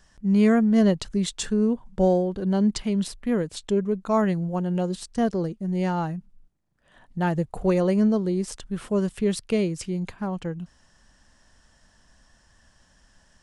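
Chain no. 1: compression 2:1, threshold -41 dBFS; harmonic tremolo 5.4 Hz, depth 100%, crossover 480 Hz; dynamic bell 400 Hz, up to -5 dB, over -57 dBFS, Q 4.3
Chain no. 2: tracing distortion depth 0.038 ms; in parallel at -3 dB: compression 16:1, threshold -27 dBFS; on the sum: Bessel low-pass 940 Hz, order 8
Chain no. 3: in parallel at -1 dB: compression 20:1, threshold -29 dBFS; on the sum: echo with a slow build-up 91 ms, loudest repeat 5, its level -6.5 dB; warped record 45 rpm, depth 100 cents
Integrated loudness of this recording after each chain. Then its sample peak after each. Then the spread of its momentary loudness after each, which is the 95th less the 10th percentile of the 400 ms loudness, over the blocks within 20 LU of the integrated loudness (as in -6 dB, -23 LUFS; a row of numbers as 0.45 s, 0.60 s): -41.5 LUFS, -23.0 LUFS, -19.0 LUFS; -24.5 dBFS, -9.0 dBFS, -2.0 dBFS; 7 LU, 9 LU, 9 LU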